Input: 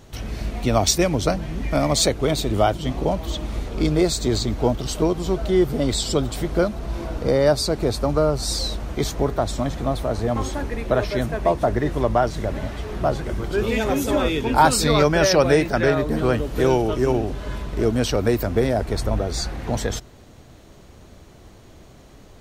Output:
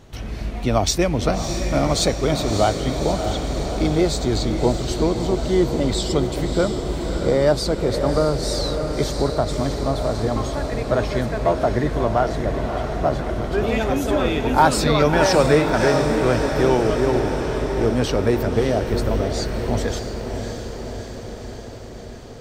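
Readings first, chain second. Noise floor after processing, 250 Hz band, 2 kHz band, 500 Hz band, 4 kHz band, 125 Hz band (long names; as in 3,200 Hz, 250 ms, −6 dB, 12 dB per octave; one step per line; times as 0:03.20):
−34 dBFS, +1.5 dB, +1.0 dB, +1.5 dB, −0.5 dB, +1.5 dB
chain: high-shelf EQ 7,000 Hz −7 dB
on a send: feedback delay with all-pass diffusion 622 ms, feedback 67%, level −7 dB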